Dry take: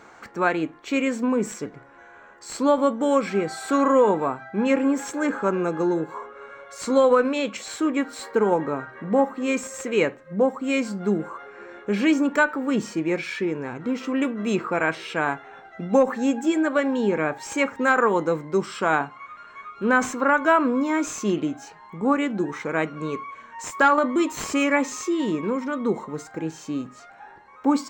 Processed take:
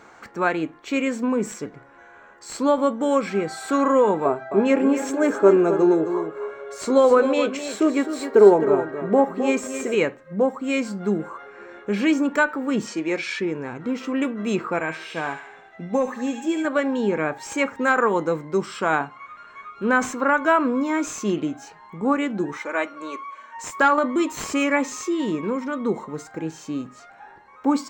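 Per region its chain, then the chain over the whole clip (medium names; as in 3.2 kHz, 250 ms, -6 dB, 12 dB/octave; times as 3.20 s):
4.25–9.95 s: small resonant body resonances 400/630 Hz, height 15 dB, ringing for 65 ms + delay 262 ms -9.5 dB
12.87–13.40 s: band-pass 230–6700 Hz + treble shelf 3.7 kHz +9.5 dB
14.80–16.65 s: band-stop 1.4 kHz, Q 7.7 + feedback comb 83 Hz, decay 0.15 s + feedback echo behind a high-pass 71 ms, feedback 56%, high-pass 1.6 kHz, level -4 dB
22.57–23.57 s: high-pass 470 Hz + comb 3.4 ms, depth 59%
whole clip: none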